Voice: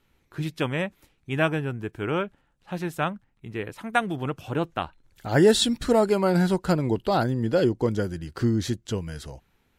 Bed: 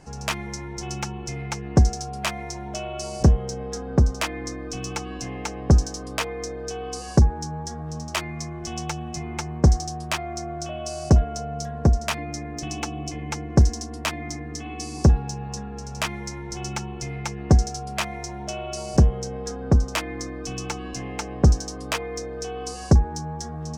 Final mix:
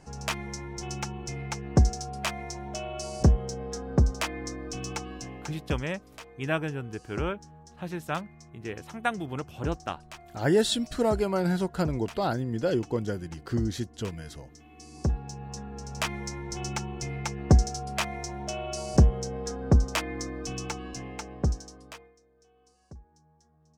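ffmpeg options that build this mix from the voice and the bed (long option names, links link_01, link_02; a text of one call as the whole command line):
ffmpeg -i stem1.wav -i stem2.wav -filter_complex "[0:a]adelay=5100,volume=-5dB[link_01];[1:a]volume=12.5dB,afade=type=out:start_time=4.92:duration=0.86:silence=0.177828,afade=type=in:start_time=14.7:duration=1.46:silence=0.149624,afade=type=out:start_time=20.38:duration=1.78:silence=0.0354813[link_02];[link_01][link_02]amix=inputs=2:normalize=0" out.wav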